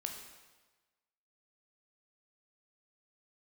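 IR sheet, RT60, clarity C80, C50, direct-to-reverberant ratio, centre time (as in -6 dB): 1.3 s, 7.0 dB, 5.5 dB, 2.5 dB, 36 ms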